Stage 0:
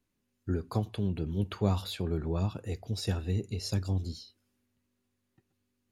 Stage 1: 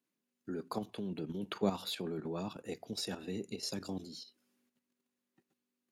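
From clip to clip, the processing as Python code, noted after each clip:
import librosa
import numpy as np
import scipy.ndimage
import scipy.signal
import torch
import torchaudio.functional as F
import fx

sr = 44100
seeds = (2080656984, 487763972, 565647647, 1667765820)

y = scipy.signal.sosfilt(scipy.signal.butter(4, 180.0, 'highpass', fs=sr, output='sos'), x)
y = fx.level_steps(y, sr, step_db=10)
y = F.gain(torch.from_numpy(y), 2.0).numpy()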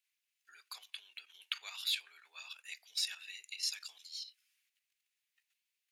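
y = fx.ladder_highpass(x, sr, hz=1900.0, resonance_pct=40)
y = F.gain(torch.from_numpy(y), 11.5).numpy()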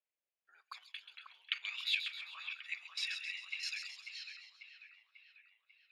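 y = fx.auto_wah(x, sr, base_hz=560.0, top_hz=2300.0, q=3.0, full_db=-44.0, direction='up')
y = fx.echo_split(y, sr, split_hz=2800.0, low_ms=543, high_ms=132, feedback_pct=52, wet_db=-7)
y = F.gain(torch.from_numpy(y), 8.5).numpy()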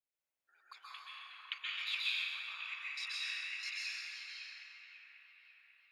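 y = fx.rev_plate(x, sr, seeds[0], rt60_s=2.9, hf_ratio=0.4, predelay_ms=115, drr_db=-7.5)
y = F.gain(torch.from_numpy(y), -5.5).numpy()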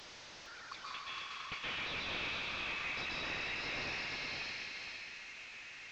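y = fx.delta_mod(x, sr, bps=32000, step_db=-51.5)
y = y + 10.0 ** (-5.0 / 20.0) * np.pad(y, (int(460 * sr / 1000.0), 0))[:len(y)]
y = F.gain(torch.from_numpy(y), 6.0).numpy()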